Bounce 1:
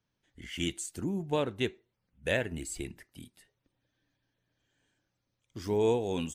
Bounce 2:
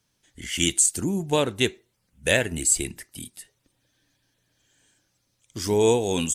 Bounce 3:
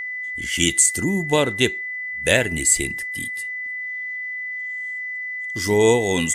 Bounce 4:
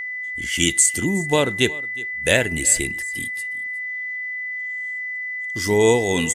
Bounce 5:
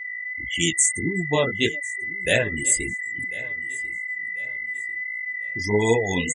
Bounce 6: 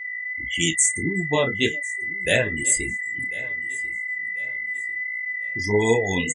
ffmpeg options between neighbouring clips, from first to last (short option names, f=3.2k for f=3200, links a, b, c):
-af "equalizer=f=8.9k:w=0.53:g=14,volume=7dB"
-af "aeval=exprs='val(0)+0.0316*sin(2*PI*2000*n/s)':c=same,volume=3.5dB"
-af "aecho=1:1:364:0.0891"
-af "flanger=delay=17:depth=5.6:speed=1.7,afftfilt=real='re*gte(hypot(re,im),0.0501)':imag='im*gte(hypot(re,im),0.0501)':win_size=1024:overlap=0.75,aecho=1:1:1045|2090|3135:0.1|0.033|0.0109"
-filter_complex "[0:a]asplit=2[a][b];[b]adelay=31,volume=-13dB[c];[a][c]amix=inputs=2:normalize=0"